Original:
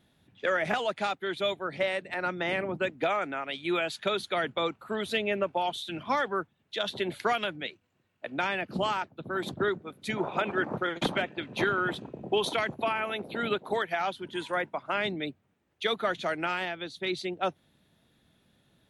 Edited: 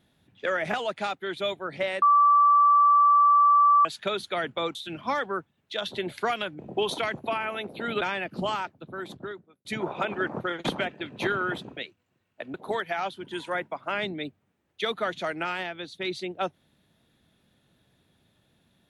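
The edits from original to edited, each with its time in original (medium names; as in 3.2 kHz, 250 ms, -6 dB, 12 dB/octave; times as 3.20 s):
2.02–3.85 s: bleep 1.16 kHz -15 dBFS
4.75–5.77 s: delete
7.61–8.38 s: swap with 12.14–13.56 s
8.94–10.02 s: fade out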